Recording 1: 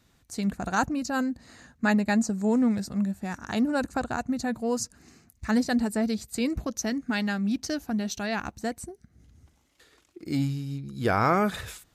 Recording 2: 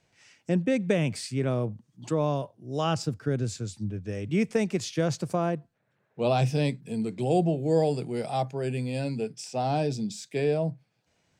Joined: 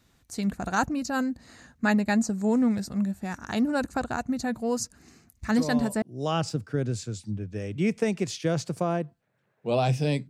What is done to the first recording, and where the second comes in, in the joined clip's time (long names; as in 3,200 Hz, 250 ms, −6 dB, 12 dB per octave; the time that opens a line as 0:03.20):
recording 1
0:05.44: mix in recording 2 from 0:01.97 0.58 s −6.5 dB
0:06.02: continue with recording 2 from 0:02.55